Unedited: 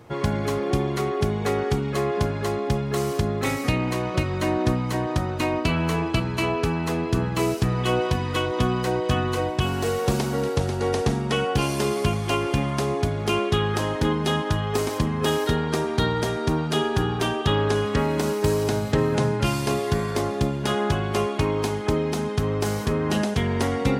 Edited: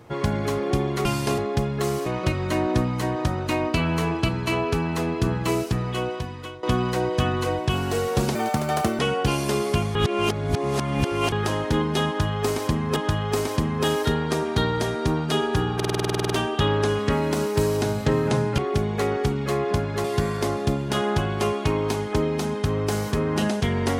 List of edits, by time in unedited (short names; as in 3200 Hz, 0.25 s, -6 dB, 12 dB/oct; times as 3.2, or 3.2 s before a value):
1.05–2.51 swap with 19.45–19.78
3.19–3.97 cut
7.36–8.54 fade out, to -17 dB
10.26–11.3 speed 162%
12.26–13.63 reverse
14.38–15.27 loop, 2 plays
17.17 stutter 0.05 s, 12 plays